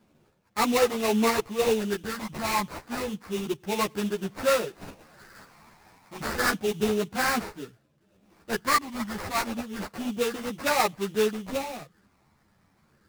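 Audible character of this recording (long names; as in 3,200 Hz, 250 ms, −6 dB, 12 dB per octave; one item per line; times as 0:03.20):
phaser sweep stages 12, 0.3 Hz, lowest notch 450–4,000 Hz
aliases and images of a low sample rate 3,200 Hz, jitter 20%
a shimmering, thickened sound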